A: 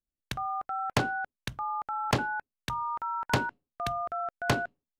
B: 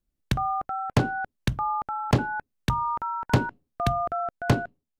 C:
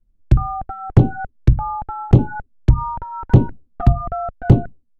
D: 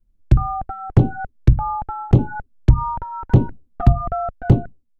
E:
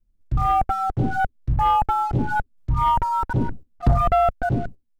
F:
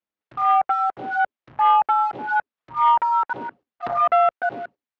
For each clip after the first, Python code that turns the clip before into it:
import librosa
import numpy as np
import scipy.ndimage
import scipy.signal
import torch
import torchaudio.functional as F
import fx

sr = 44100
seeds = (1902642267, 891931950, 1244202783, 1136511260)

y1 = fx.low_shelf(x, sr, hz=490.0, db=11.5)
y1 = fx.rider(y1, sr, range_db=4, speed_s=0.5)
y2 = fx.env_flanger(y1, sr, rest_ms=9.5, full_db=-19.5)
y2 = fx.tilt_eq(y2, sr, slope=-4.0)
y2 = fx.fold_sine(y2, sr, drive_db=4, ceiling_db=3.0)
y2 = F.gain(torch.from_numpy(y2), -4.5).numpy()
y3 = fx.rider(y2, sr, range_db=4, speed_s=0.5)
y3 = F.gain(torch.from_numpy(y3), -1.0).numpy()
y4 = fx.auto_swell(y3, sr, attack_ms=203.0)
y4 = fx.leveller(y4, sr, passes=2)
y5 = fx.bandpass_edges(y4, sr, low_hz=760.0, high_hz=2900.0)
y5 = F.gain(torch.from_numpy(y5), 4.5).numpy()